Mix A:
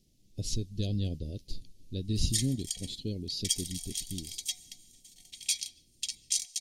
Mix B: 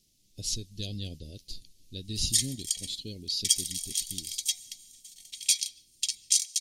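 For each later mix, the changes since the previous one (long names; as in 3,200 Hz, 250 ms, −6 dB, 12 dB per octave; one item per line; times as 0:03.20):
master: add tilt shelving filter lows −6.5 dB, about 1,400 Hz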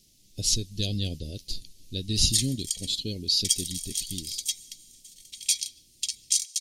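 speech +7.5 dB
background: add high-pass filter 1,500 Hz 6 dB per octave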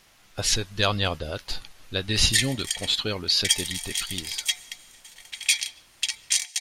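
master: remove Chebyshev band-stop filter 280–4,900 Hz, order 2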